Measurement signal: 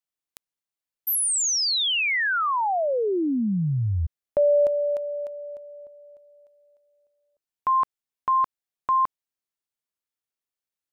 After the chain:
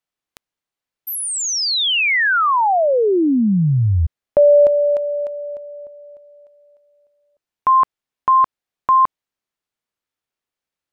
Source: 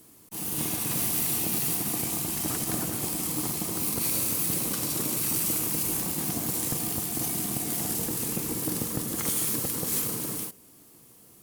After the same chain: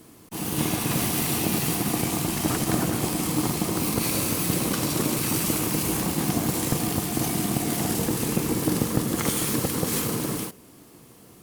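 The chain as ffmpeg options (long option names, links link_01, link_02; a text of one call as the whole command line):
ffmpeg -i in.wav -af "highshelf=frequency=5800:gain=-11.5,volume=8.5dB" out.wav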